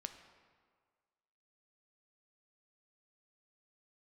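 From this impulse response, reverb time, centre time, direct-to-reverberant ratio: 1.7 s, 20 ms, 7.0 dB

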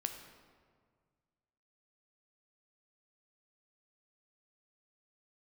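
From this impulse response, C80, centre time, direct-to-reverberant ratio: 8.5 dB, 27 ms, 5.5 dB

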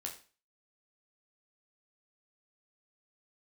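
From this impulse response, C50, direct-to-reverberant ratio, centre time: 10.0 dB, 0.5 dB, 17 ms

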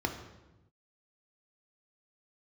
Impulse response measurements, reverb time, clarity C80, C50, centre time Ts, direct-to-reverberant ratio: 1.0 s, 10.5 dB, 8.0 dB, 22 ms, 4.0 dB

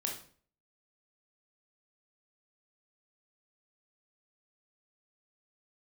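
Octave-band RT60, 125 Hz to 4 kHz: 0.55, 0.50, 0.50, 0.45, 0.40, 0.40 s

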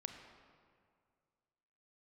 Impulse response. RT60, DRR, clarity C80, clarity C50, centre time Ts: 2.1 s, 5.0 dB, 7.0 dB, 6.0 dB, 40 ms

